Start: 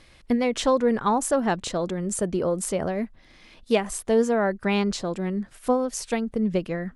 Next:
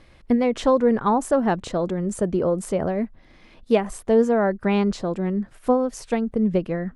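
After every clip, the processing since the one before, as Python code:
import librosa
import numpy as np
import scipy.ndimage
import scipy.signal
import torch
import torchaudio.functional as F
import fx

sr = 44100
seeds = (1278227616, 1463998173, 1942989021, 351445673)

y = fx.high_shelf(x, sr, hz=2200.0, db=-11.0)
y = y * librosa.db_to_amplitude(3.5)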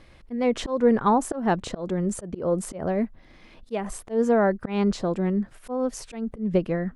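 y = fx.auto_swell(x, sr, attack_ms=192.0)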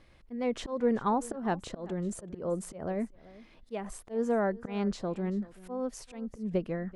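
y = x + 10.0 ** (-20.0 / 20.0) * np.pad(x, (int(385 * sr / 1000.0), 0))[:len(x)]
y = y * librosa.db_to_amplitude(-8.0)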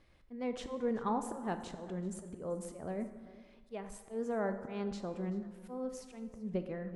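y = fx.rev_plate(x, sr, seeds[0], rt60_s=1.5, hf_ratio=0.6, predelay_ms=0, drr_db=8.0)
y = y * librosa.db_to_amplitude(-6.5)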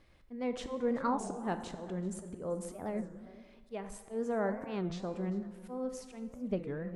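y = fx.record_warp(x, sr, rpm=33.33, depth_cents=250.0)
y = y * librosa.db_to_amplitude(2.0)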